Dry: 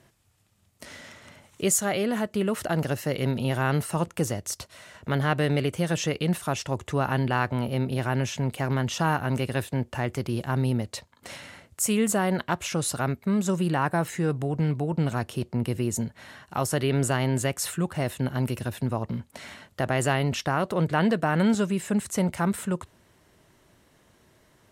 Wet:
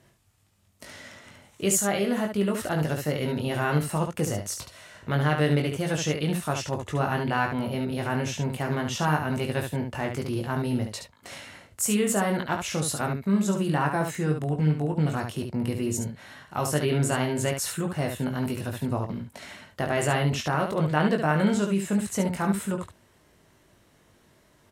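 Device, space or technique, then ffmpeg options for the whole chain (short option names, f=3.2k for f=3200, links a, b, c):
slapback doubling: -filter_complex "[0:a]asplit=3[a][b][c];[b]adelay=20,volume=-4.5dB[d];[c]adelay=71,volume=-6dB[e];[a][d][e]amix=inputs=3:normalize=0,volume=-2dB"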